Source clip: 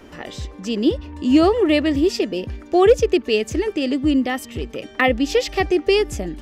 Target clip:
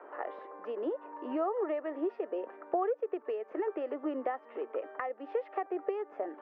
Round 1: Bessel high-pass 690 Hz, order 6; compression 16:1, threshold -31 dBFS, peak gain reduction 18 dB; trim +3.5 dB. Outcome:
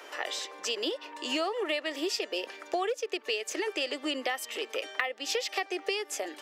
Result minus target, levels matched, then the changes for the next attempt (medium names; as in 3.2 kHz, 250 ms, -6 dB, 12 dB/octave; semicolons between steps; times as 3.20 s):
1 kHz band -3.5 dB
add after compression: low-pass 1.3 kHz 24 dB/octave